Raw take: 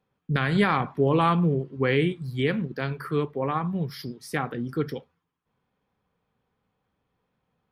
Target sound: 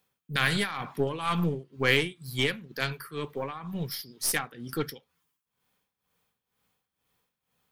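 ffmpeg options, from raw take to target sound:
ffmpeg -i in.wav -af "crystalizer=i=9:c=0,tremolo=f=2.1:d=0.79,aeval=exprs='0.668*(cos(1*acos(clip(val(0)/0.668,-1,1)))-cos(1*PI/2))+0.0376*(cos(8*acos(clip(val(0)/0.668,-1,1)))-cos(8*PI/2))':channel_layout=same,volume=-4.5dB" out.wav

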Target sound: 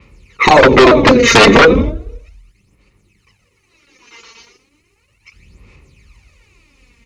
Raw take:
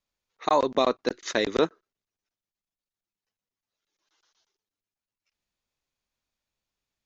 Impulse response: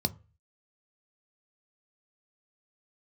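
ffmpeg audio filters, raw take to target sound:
-filter_complex "[0:a]asplit=4[link_01][link_02][link_03][link_04];[link_02]adelay=83,afreqshift=-120,volume=-21dB[link_05];[link_03]adelay=166,afreqshift=-240,volume=-29.6dB[link_06];[link_04]adelay=249,afreqshift=-360,volume=-38.3dB[link_07];[link_01][link_05][link_06][link_07]amix=inputs=4:normalize=0,acompressor=threshold=-23dB:ratio=2.5[link_08];[1:a]atrim=start_sample=2205,asetrate=22491,aresample=44100[link_09];[link_08][link_09]afir=irnorm=-1:irlink=0,aphaser=in_gain=1:out_gain=1:delay=4.4:decay=0.64:speed=0.35:type=sinusoidal,aeval=exprs='1*sin(PI/2*3.98*val(0)/1)':channel_layout=same,alimiter=level_in=6dB:limit=-1dB:release=50:level=0:latency=1,adynamicequalizer=threshold=0.0501:dfrequency=6100:dqfactor=0.7:tfrequency=6100:tqfactor=0.7:attack=5:release=100:ratio=0.375:range=3:mode=cutabove:tftype=highshelf,volume=-1dB"

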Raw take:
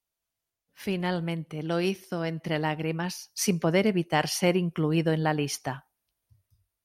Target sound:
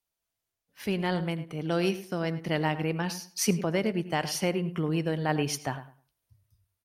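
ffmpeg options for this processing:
ffmpeg -i in.wav -filter_complex "[0:a]asplit=2[link_01][link_02];[link_02]aecho=0:1:82:0.0891[link_03];[link_01][link_03]amix=inputs=2:normalize=0,asplit=3[link_04][link_05][link_06];[link_04]afade=type=out:start_time=3.6:duration=0.02[link_07];[link_05]acompressor=threshold=-31dB:ratio=1.5,afade=type=in:start_time=3.6:duration=0.02,afade=type=out:start_time=5.28:duration=0.02[link_08];[link_06]afade=type=in:start_time=5.28:duration=0.02[link_09];[link_07][link_08][link_09]amix=inputs=3:normalize=0,asplit=2[link_10][link_11];[link_11]adelay=104,lowpass=frequency=2300:poles=1,volume=-13dB,asplit=2[link_12][link_13];[link_13]adelay=104,lowpass=frequency=2300:poles=1,volume=0.22,asplit=2[link_14][link_15];[link_15]adelay=104,lowpass=frequency=2300:poles=1,volume=0.22[link_16];[link_12][link_14][link_16]amix=inputs=3:normalize=0[link_17];[link_10][link_17]amix=inputs=2:normalize=0" out.wav

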